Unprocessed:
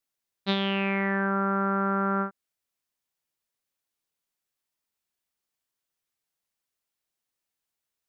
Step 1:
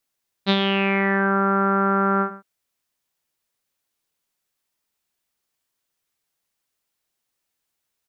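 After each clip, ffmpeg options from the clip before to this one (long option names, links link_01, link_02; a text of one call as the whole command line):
ffmpeg -i in.wav -af "aecho=1:1:115:0.158,volume=6.5dB" out.wav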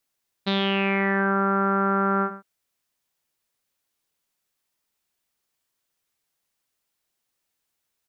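ffmpeg -i in.wav -af "alimiter=limit=-12.5dB:level=0:latency=1" out.wav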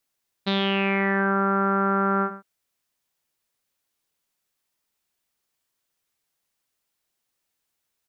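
ffmpeg -i in.wav -af anull out.wav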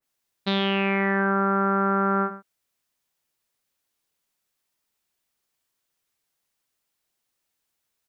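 ffmpeg -i in.wav -af "adynamicequalizer=threshold=0.0158:dfrequency=2300:dqfactor=0.7:tfrequency=2300:tqfactor=0.7:attack=5:release=100:ratio=0.375:range=1.5:mode=cutabove:tftype=highshelf" out.wav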